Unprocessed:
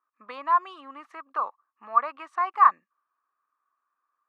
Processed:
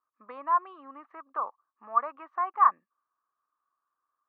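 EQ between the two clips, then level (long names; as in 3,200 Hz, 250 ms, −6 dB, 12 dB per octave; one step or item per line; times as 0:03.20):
low-pass filter 1,400 Hz 12 dB per octave
−2.0 dB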